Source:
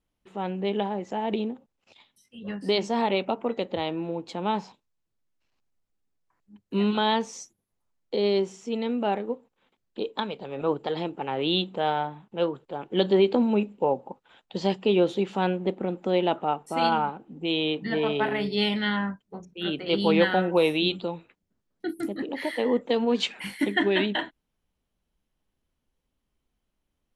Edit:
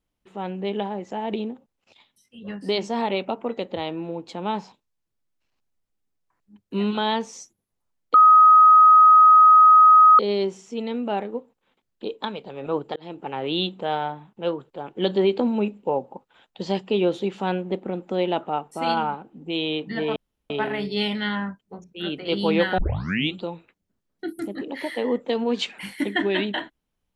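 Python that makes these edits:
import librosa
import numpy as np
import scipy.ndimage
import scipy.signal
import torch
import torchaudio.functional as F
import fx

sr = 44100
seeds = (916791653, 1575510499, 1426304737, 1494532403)

y = fx.edit(x, sr, fx.insert_tone(at_s=8.14, length_s=2.05, hz=1260.0, db=-8.5),
    fx.fade_in_span(start_s=10.91, length_s=0.27),
    fx.insert_room_tone(at_s=18.11, length_s=0.34),
    fx.tape_start(start_s=20.39, length_s=0.56), tone=tone)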